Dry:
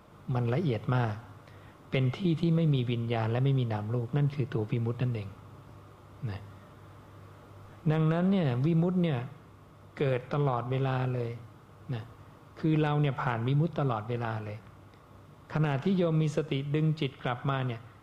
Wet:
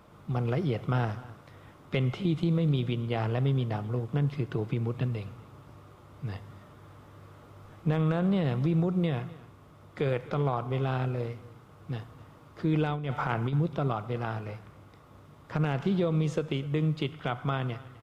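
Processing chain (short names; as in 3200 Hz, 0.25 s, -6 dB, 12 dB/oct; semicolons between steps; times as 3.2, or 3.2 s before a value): echo 0.253 s -20 dB; 12.84–13.53 negative-ratio compressor -29 dBFS, ratio -0.5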